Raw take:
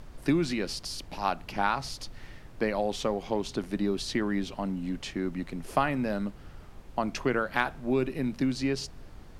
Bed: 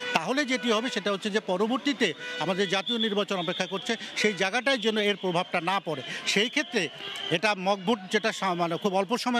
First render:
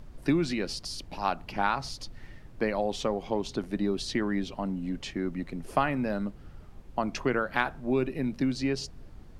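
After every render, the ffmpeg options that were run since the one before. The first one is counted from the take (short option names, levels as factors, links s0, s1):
-af "afftdn=nr=6:nf=-49"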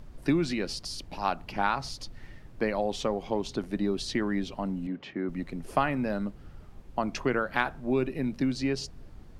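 -filter_complex "[0:a]asettb=1/sr,asplit=3[s0][s1][s2];[s0]atrim=end=4.874[s3];[s1]atrim=start=4.87:end=5.29,asetpts=PTS-STARTPTS,afade=t=in:d=0.004:c=qsin,afade=t=out:st=0.416:d=0.004:c=qsin,highpass=170,lowpass=2400[s4];[s2]atrim=start=5.286[s5];[s3][s4]acrossfade=d=0.004:c1=hsin:c2=qsin[s6];[s6][s5]acrossfade=d=0.004:c1=qsin:c2=hsin"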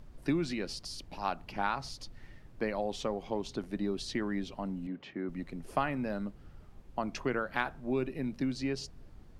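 -af "volume=0.562"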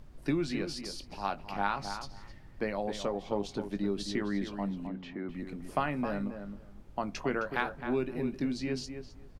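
-filter_complex "[0:a]asplit=2[s0][s1];[s1]adelay=20,volume=0.266[s2];[s0][s2]amix=inputs=2:normalize=0,asplit=2[s3][s4];[s4]adelay=263,lowpass=f=2100:p=1,volume=0.398,asplit=2[s5][s6];[s6]adelay=263,lowpass=f=2100:p=1,volume=0.16,asplit=2[s7][s8];[s8]adelay=263,lowpass=f=2100:p=1,volume=0.16[s9];[s3][s5][s7][s9]amix=inputs=4:normalize=0"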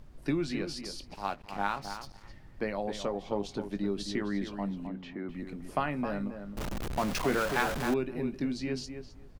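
-filter_complex "[0:a]asettb=1/sr,asplit=3[s0][s1][s2];[s0]atrim=end=1.144[s3];[s1]atrim=start=1.14:end=2.25,asetpts=PTS-STARTPTS,afade=t=in:d=0.004:c=qsin,afade=t=out:st=1.106:d=0.004:c=qsin,aeval=exprs='sgn(val(0))*max(abs(val(0))-0.00335,0)':c=same[s4];[s2]atrim=start=2.246[s5];[s3][s4]acrossfade=d=0.004:c1=hsin:c2=qsin[s6];[s6][s5]acrossfade=d=0.004:c1=qsin:c2=hsin,asettb=1/sr,asplit=3[s7][s8][s9];[s7]atrim=end=6.574[s10];[s8]atrim=start=6.57:end=7.94,asetpts=PTS-STARTPTS,afade=t=in:d=0.004:c=qsin,afade=t=out:st=1.366:d=0.004:c=qsin,aeval=exprs='val(0)+0.5*0.0335*sgn(val(0))':c=same[s11];[s9]atrim=start=7.936[s12];[s10][s11]acrossfade=d=0.004:c1=hsin:c2=qsin[s13];[s13][s12]acrossfade=d=0.004:c1=qsin:c2=hsin"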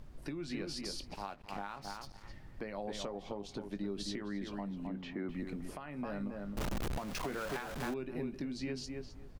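-af "acompressor=threshold=0.0224:ratio=6,alimiter=level_in=1.68:limit=0.0631:level=0:latency=1:release=447,volume=0.596"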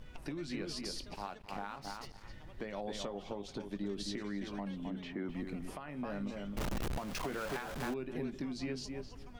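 -filter_complex "[1:a]volume=0.0266[s0];[0:a][s0]amix=inputs=2:normalize=0"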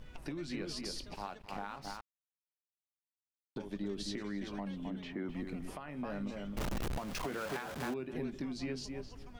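-filter_complex "[0:a]asettb=1/sr,asplit=3[s0][s1][s2];[s0]atrim=end=7.274[s3];[s1]atrim=start=7.27:end=8.14,asetpts=PTS-STARTPTS,afade=t=in:d=0.004:c=qsin,afade=t=out:st=0.866:d=0.004:c=qsin,highpass=79[s4];[s2]atrim=start=8.136[s5];[s3][s4]acrossfade=d=0.004:c1=hsin:c2=qsin[s6];[s6][s5]acrossfade=d=0.004:c1=qsin:c2=hsin,asplit=3[s7][s8][s9];[s7]atrim=end=2.01,asetpts=PTS-STARTPTS,afade=t=out:st=2.006:d=0.004:c=hsin[s10];[s8]atrim=start=2.01:end=3.56,asetpts=PTS-STARTPTS,volume=0[s11];[s9]atrim=start=3.56,asetpts=PTS-STARTPTS,afade=t=in:d=0.004:c=hsin[s12];[s10][s11][s12]concat=n=3:v=0:a=1"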